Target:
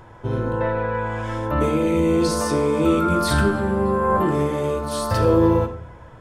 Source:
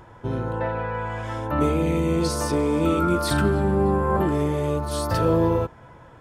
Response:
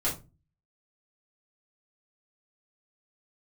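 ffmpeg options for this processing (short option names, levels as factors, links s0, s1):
-filter_complex "[0:a]asplit=2[s0][s1];[1:a]atrim=start_sample=2205,asetrate=22491,aresample=44100[s2];[s1][s2]afir=irnorm=-1:irlink=0,volume=0.15[s3];[s0][s3]amix=inputs=2:normalize=0"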